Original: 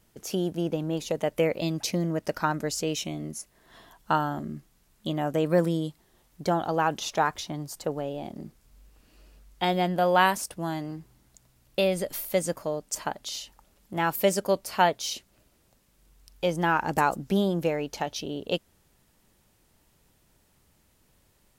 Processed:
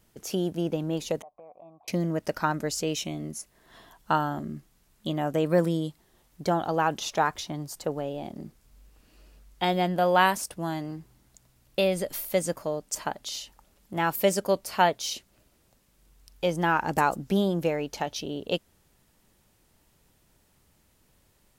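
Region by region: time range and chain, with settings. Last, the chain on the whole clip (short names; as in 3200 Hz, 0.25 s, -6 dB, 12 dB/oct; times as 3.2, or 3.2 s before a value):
1.22–1.88 vocal tract filter a + compressor, threshold -44 dBFS
whole clip: dry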